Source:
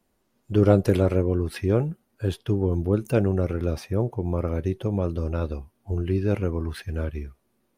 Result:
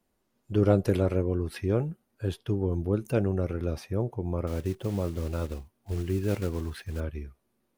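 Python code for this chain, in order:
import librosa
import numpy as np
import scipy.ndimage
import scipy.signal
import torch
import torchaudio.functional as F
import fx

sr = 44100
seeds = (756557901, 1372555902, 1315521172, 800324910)

y = fx.block_float(x, sr, bits=5, at=(4.47, 7.02))
y = y * 10.0 ** (-4.5 / 20.0)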